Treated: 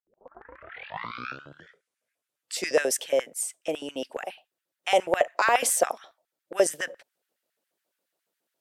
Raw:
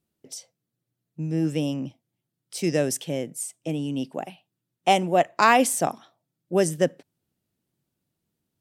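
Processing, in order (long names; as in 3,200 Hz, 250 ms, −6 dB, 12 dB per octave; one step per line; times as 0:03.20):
turntable start at the beginning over 2.80 s
brickwall limiter −13.5 dBFS, peak gain reduction 9.5 dB
auto-filter high-pass square 7.2 Hz 540–1,600 Hz
level +1.5 dB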